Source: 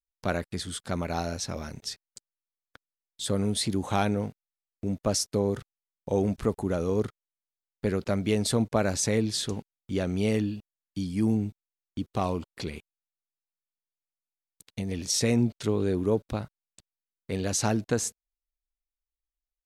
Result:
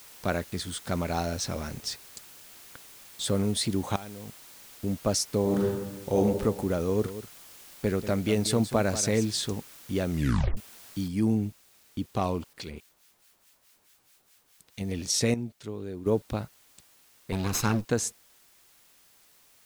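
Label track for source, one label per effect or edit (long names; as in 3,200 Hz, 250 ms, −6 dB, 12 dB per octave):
0.870000	3.430000	mu-law and A-law mismatch coded by mu
3.960000	4.840000	output level in coarse steps of 21 dB
5.410000	6.160000	thrown reverb, RT60 1.3 s, DRR −3.5 dB
6.830000	9.260000	single-tap delay 187 ms −12.5 dB
10.100000	10.100000	tape stop 0.47 s
11.080000	11.080000	noise floor change −50 dB −60 dB
12.530000	14.810000	two-band tremolo in antiphase 4.7 Hz, crossover 1,300 Hz
15.340000	16.060000	clip gain −10.5 dB
17.320000	17.850000	lower of the sound and its delayed copy delay 0.78 ms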